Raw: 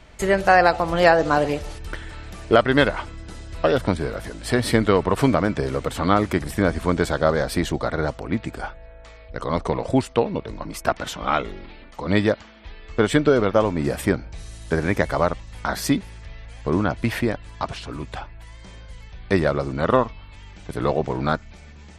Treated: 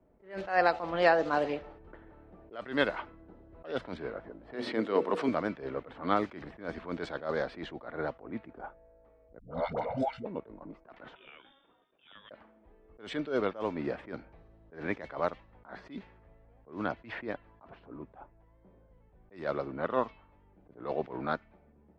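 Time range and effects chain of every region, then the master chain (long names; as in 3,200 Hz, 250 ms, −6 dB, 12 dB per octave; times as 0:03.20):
0:04.54–0:05.29: high-pass filter 290 Hz + low-shelf EQ 390 Hz +10.5 dB + mains-hum notches 60/120/180/240/300/360/420/480/540 Hz
0:09.39–0:10.25: comb filter 1.4 ms, depth 77% + all-pass dispersion highs, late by 123 ms, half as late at 440 Hz
0:11.15–0:12.31: downward compressor 16 to 1, threshold −24 dBFS + voice inversion scrambler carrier 3,600 Hz
whole clip: low-pass that shuts in the quiet parts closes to 450 Hz, open at −13 dBFS; three-way crossover with the lows and the highs turned down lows −14 dB, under 200 Hz, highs −14 dB, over 5,200 Hz; level that may rise only so fast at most 160 dB per second; level −8.5 dB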